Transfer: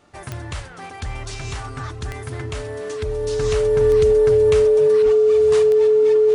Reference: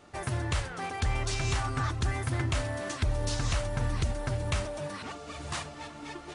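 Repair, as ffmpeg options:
-filter_complex "[0:a]adeclick=t=4,bandreject=f=430:w=30,asplit=3[a][b][c];[a]afade=t=out:st=5.04:d=0.02[d];[b]highpass=f=140:w=0.5412,highpass=f=140:w=1.3066,afade=t=in:st=5.04:d=0.02,afade=t=out:st=5.16:d=0.02[e];[c]afade=t=in:st=5.16:d=0.02[f];[d][e][f]amix=inputs=3:normalize=0,asetnsamples=n=441:p=0,asendcmd='3.39 volume volume -4dB',volume=0dB"

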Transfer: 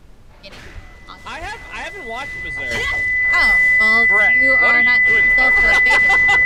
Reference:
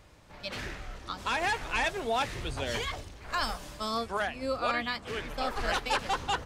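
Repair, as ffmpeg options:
-filter_complex "[0:a]bandreject=f=2k:w=30,asplit=3[a][b][c];[a]afade=t=out:st=0.74:d=0.02[d];[b]highpass=f=140:w=0.5412,highpass=f=140:w=1.3066,afade=t=in:st=0.74:d=0.02,afade=t=out:st=0.86:d=0.02[e];[c]afade=t=in:st=0.86:d=0.02[f];[d][e][f]amix=inputs=3:normalize=0,asplit=3[g][h][i];[g]afade=t=out:st=1.4:d=0.02[j];[h]highpass=f=140:w=0.5412,highpass=f=140:w=1.3066,afade=t=in:st=1.4:d=0.02,afade=t=out:st=1.52:d=0.02[k];[i]afade=t=in:st=1.52:d=0.02[l];[j][k][l]amix=inputs=3:normalize=0,agate=range=-21dB:threshold=-31dB,asetnsamples=n=441:p=0,asendcmd='2.71 volume volume -8dB',volume=0dB"

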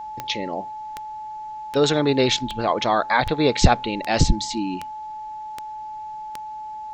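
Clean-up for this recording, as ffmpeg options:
-af "adeclick=t=4,bandreject=f=860:w=30,agate=range=-21dB:threshold=-26dB"

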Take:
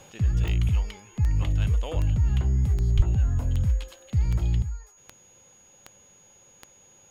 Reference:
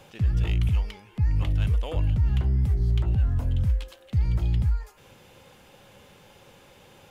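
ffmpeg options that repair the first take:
-filter_complex "[0:a]adeclick=t=4,bandreject=f=6.7k:w=30,asplit=3[a][b][c];[a]afade=t=out:st=2.96:d=0.02[d];[b]highpass=f=140:w=0.5412,highpass=f=140:w=1.3066,afade=t=in:st=2.96:d=0.02,afade=t=out:st=3.08:d=0.02[e];[c]afade=t=in:st=3.08:d=0.02[f];[d][e][f]amix=inputs=3:normalize=0,asetnsamples=n=441:p=0,asendcmd='4.62 volume volume 9dB',volume=0dB"

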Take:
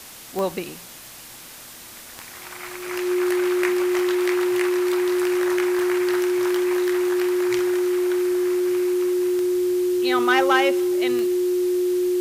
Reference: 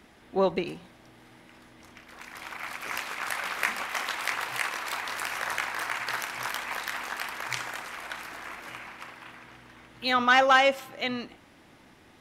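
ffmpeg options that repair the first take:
-af "adeclick=t=4,bandreject=f=360:w=30,afwtdn=0.01"

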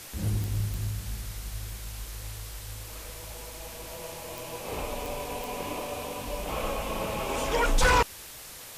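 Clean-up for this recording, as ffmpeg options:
-af "adeclick=t=4,afwtdn=0.0071"

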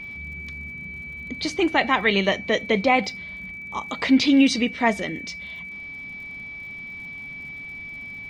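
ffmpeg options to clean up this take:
-af "adeclick=t=4,bandreject=f=2.3k:w=30"

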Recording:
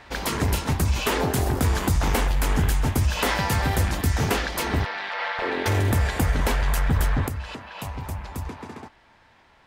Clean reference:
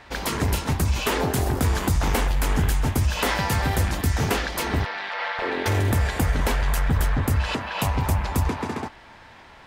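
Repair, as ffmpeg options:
-af "asetnsamples=n=441:p=0,asendcmd='7.28 volume volume 9.5dB',volume=0dB"

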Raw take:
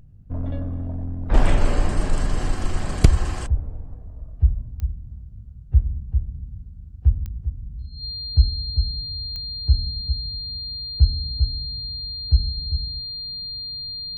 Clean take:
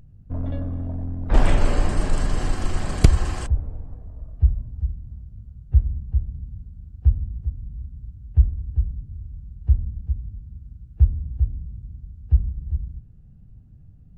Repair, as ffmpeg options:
-af "adeclick=t=4,bandreject=f=4.2k:w=30"

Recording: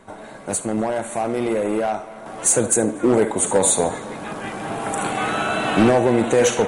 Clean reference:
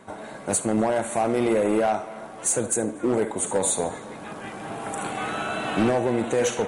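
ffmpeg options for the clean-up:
-af "agate=range=-21dB:threshold=-27dB,asetnsamples=n=441:p=0,asendcmd='2.26 volume volume -6.5dB',volume=0dB"

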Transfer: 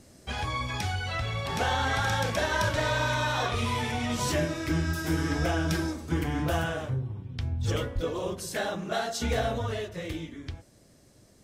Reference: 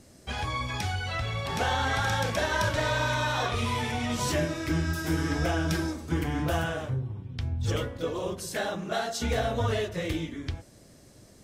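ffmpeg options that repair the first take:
-filter_complex "[0:a]asplit=3[a][b][c];[a]afade=t=out:st=7.94:d=0.02[d];[b]highpass=f=140:w=0.5412,highpass=f=140:w=1.3066,afade=t=in:st=7.94:d=0.02,afade=t=out:st=8.06:d=0.02[e];[c]afade=t=in:st=8.06:d=0.02[f];[d][e][f]amix=inputs=3:normalize=0,asetnsamples=n=441:p=0,asendcmd='9.58 volume volume 4.5dB',volume=0dB"

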